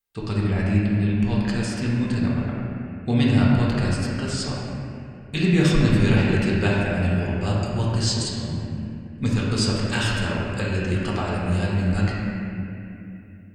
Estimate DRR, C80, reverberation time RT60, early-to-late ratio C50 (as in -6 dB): -6.0 dB, -0.5 dB, 2.8 s, -2.0 dB